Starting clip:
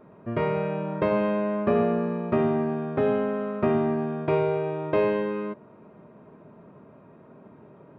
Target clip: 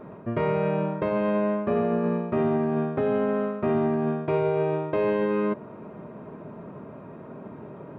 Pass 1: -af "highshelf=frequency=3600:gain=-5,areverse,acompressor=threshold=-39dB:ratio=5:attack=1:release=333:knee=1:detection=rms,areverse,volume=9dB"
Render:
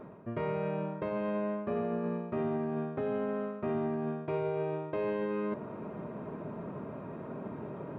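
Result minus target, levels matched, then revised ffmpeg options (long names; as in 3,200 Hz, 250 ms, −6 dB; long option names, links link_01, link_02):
downward compressor: peak gain reduction +9 dB
-af "highshelf=frequency=3600:gain=-5,areverse,acompressor=threshold=-28dB:ratio=5:attack=1:release=333:knee=1:detection=rms,areverse,volume=9dB"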